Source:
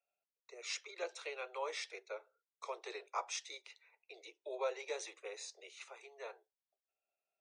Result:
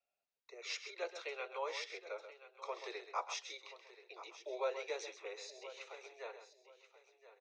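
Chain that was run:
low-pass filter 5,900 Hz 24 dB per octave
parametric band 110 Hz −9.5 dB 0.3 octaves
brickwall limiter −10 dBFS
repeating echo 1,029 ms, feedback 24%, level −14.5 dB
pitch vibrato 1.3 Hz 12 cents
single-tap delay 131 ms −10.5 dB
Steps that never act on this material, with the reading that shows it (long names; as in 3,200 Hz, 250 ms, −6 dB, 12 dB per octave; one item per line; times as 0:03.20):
parametric band 110 Hz: nothing at its input below 300 Hz
brickwall limiter −10 dBFS: peak of its input −24.0 dBFS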